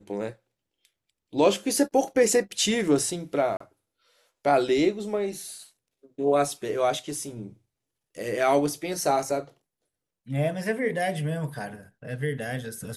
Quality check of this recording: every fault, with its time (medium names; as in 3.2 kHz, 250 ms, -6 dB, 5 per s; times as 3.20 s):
3.57–3.60 s: dropout 34 ms